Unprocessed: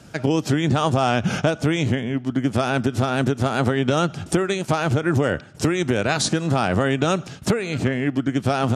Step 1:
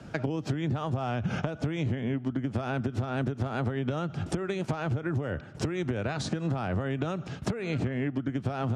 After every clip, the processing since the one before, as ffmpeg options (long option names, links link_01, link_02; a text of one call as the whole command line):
ffmpeg -i in.wav -filter_complex "[0:a]acrossover=split=120[link_01][link_02];[link_02]acompressor=threshold=-25dB:ratio=6[link_03];[link_01][link_03]amix=inputs=2:normalize=0,aemphasis=mode=reproduction:type=75fm,acompressor=threshold=-26dB:ratio=6" out.wav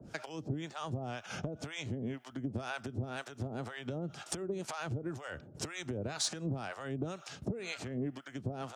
ffmpeg -i in.wav -filter_complex "[0:a]bass=frequency=250:gain=-4,treble=frequency=4000:gain=12,acrossover=split=650[link_01][link_02];[link_01]aeval=exprs='val(0)*(1-1/2+1/2*cos(2*PI*2*n/s))':channel_layout=same[link_03];[link_02]aeval=exprs='val(0)*(1-1/2-1/2*cos(2*PI*2*n/s))':channel_layout=same[link_04];[link_03][link_04]amix=inputs=2:normalize=0,asoftclip=type=tanh:threshold=-19dB,volume=-2dB" out.wav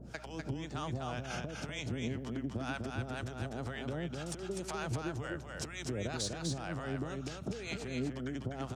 ffmpeg -i in.wav -af "alimiter=level_in=5dB:limit=-24dB:level=0:latency=1:release=445,volume=-5dB,aeval=exprs='val(0)+0.00178*(sin(2*PI*60*n/s)+sin(2*PI*2*60*n/s)/2+sin(2*PI*3*60*n/s)/3+sin(2*PI*4*60*n/s)/4+sin(2*PI*5*60*n/s)/5)':channel_layout=same,aecho=1:1:249:0.631,volume=1dB" out.wav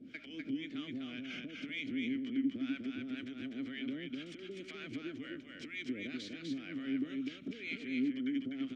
ffmpeg -i in.wav -filter_complex "[0:a]asplit=2[link_01][link_02];[link_02]highpass=frequency=720:poles=1,volume=12dB,asoftclip=type=tanh:threshold=-24.5dB[link_03];[link_01][link_03]amix=inputs=2:normalize=0,lowpass=frequency=3200:poles=1,volume=-6dB,acrusher=bits=11:mix=0:aa=0.000001,asplit=3[link_04][link_05][link_06];[link_04]bandpass=frequency=270:width_type=q:width=8,volume=0dB[link_07];[link_05]bandpass=frequency=2290:width_type=q:width=8,volume=-6dB[link_08];[link_06]bandpass=frequency=3010:width_type=q:width=8,volume=-9dB[link_09];[link_07][link_08][link_09]amix=inputs=3:normalize=0,volume=8.5dB" out.wav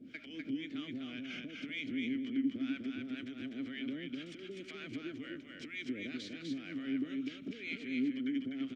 ffmpeg -i in.wav -af "aecho=1:1:208:0.119" out.wav